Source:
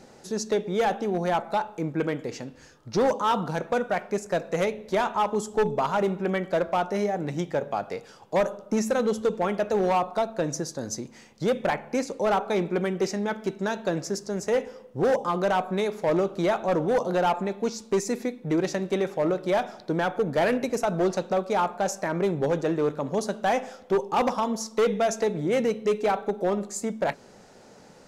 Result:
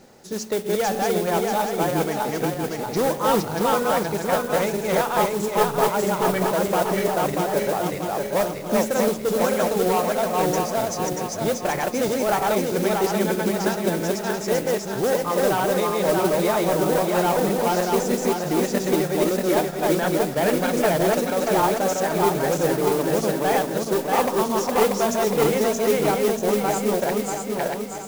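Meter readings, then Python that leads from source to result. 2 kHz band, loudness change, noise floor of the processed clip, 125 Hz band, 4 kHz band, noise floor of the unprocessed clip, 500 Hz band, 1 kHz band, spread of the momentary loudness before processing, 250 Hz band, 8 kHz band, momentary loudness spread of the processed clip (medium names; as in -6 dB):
+5.0 dB, +4.5 dB, -31 dBFS, +4.5 dB, +7.0 dB, -51 dBFS, +4.5 dB, +4.5 dB, 6 LU, +4.5 dB, +8.5 dB, 4 LU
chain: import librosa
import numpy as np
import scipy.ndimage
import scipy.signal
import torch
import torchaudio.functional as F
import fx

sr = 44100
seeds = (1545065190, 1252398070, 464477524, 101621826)

y = fx.reverse_delay_fb(x, sr, ms=318, feedback_pct=71, wet_db=-0.5)
y = fx.mod_noise(y, sr, seeds[0], snr_db=14)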